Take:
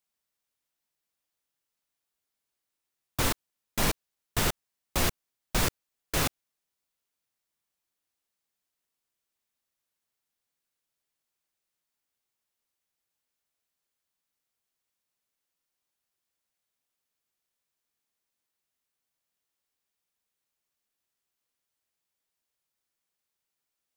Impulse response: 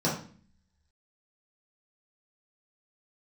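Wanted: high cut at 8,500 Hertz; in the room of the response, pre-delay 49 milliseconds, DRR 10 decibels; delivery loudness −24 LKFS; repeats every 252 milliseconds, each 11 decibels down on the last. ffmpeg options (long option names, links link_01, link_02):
-filter_complex "[0:a]lowpass=8500,aecho=1:1:252|504|756:0.282|0.0789|0.0221,asplit=2[link_01][link_02];[1:a]atrim=start_sample=2205,adelay=49[link_03];[link_02][link_03]afir=irnorm=-1:irlink=0,volume=-21dB[link_04];[link_01][link_04]amix=inputs=2:normalize=0,volume=7dB"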